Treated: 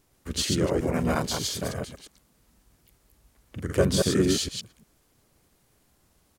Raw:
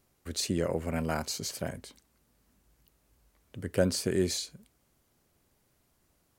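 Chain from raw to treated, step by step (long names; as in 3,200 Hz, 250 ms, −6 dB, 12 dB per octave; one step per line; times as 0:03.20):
delay that plays each chunk backwards 115 ms, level −2.5 dB
pitch-shifted copies added −5 semitones −2 dB
level +2 dB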